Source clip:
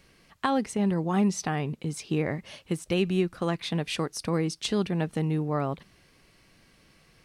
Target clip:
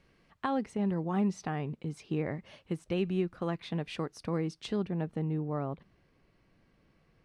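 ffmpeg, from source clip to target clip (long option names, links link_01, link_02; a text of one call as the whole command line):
ffmpeg -i in.wav -af "asetnsamples=nb_out_samples=441:pad=0,asendcmd='4.76 lowpass f 1000',lowpass=frequency=2000:poles=1,volume=-5dB" out.wav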